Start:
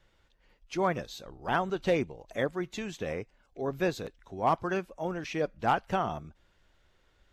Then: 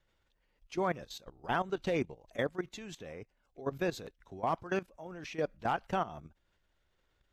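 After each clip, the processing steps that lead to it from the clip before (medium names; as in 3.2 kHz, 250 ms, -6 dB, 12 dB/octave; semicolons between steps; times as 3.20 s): level held to a coarse grid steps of 15 dB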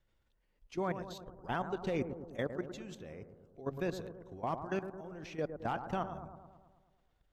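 bass shelf 340 Hz +6 dB; on a send: bucket-brigade echo 108 ms, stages 1024, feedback 61%, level -9 dB; on the sum: trim -5.5 dB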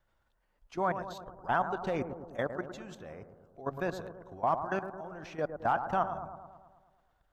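high-order bell 1 kHz +8.5 dB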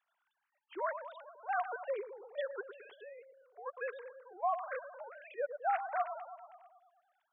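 formants replaced by sine waves; tape noise reduction on one side only encoder only; trim -5 dB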